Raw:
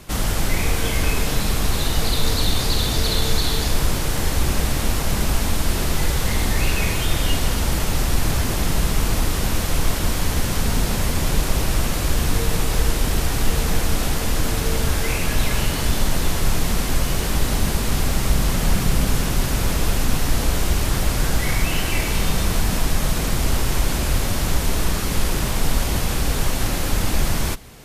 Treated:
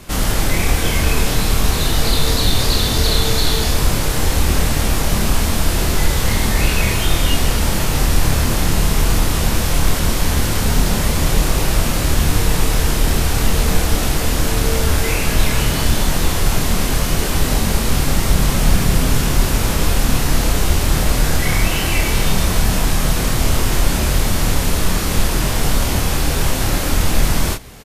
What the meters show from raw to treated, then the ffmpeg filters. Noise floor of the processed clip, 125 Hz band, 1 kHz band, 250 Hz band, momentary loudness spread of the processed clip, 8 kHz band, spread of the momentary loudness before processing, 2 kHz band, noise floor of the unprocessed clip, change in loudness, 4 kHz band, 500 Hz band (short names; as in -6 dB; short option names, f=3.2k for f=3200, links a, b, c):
-19 dBFS, +4.5 dB, +4.5 dB, +4.5 dB, 2 LU, +4.5 dB, 2 LU, +4.5 dB, -23 dBFS, +4.5 dB, +4.5 dB, +4.5 dB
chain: -filter_complex "[0:a]asplit=2[a][b];[b]adelay=27,volume=-4dB[c];[a][c]amix=inputs=2:normalize=0,volume=3dB"